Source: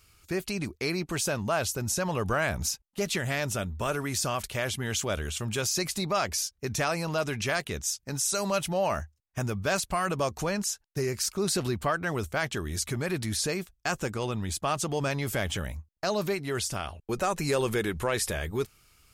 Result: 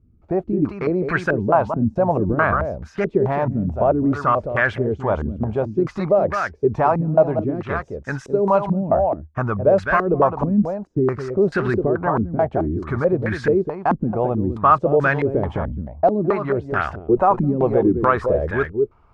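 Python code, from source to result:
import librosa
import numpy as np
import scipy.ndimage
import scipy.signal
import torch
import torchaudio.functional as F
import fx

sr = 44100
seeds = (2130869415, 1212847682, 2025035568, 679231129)

y = x + 10.0 ** (-7.5 / 20.0) * np.pad(x, (int(212 * sr / 1000.0), 0))[:len(x)]
y = fx.filter_held_lowpass(y, sr, hz=4.6, low_hz=240.0, high_hz=1600.0)
y = y * librosa.db_to_amplitude(7.0)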